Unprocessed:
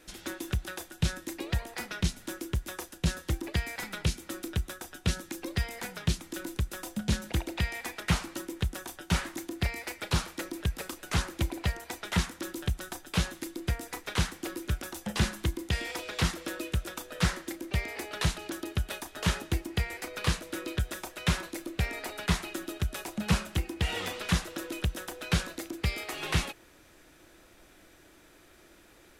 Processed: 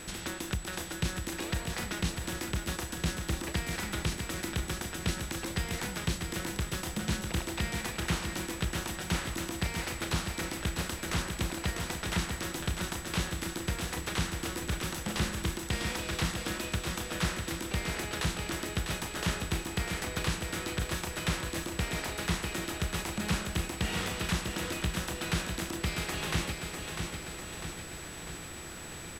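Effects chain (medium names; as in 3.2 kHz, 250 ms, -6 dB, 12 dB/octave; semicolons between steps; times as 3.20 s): spectral levelling over time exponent 0.6; in parallel at -1 dB: compression, threshold -32 dBFS, peak gain reduction 13.5 dB; on the sum: feedback delay 649 ms, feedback 58%, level -6 dB; whistle 7.9 kHz -39 dBFS; trim -8.5 dB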